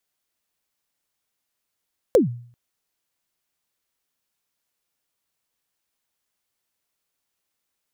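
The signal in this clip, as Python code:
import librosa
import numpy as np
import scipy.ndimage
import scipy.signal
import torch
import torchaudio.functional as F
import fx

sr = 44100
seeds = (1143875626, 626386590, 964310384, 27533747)

y = fx.drum_kick(sr, seeds[0], length_s=0.39, level_db=-8.5, start_hz=560.0, end_hz=120.0, sweep_ms=133.0, decay_s=0.52, click=True)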